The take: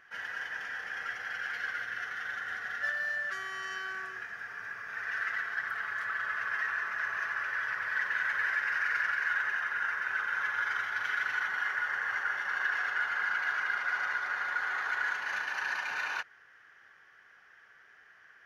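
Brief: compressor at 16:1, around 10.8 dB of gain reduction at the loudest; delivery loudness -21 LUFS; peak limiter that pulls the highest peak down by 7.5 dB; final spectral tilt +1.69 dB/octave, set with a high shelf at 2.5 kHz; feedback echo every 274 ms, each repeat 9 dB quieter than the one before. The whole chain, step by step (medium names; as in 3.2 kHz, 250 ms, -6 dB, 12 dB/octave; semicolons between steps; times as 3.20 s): treble shelf 2.5 kHz -6.5 dB; compression 16:1, threshold -40 dBFS; peak limiter -39 dBFS; feedback delay 274 ms, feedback 35%, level -9 dB; trim +24.5 dB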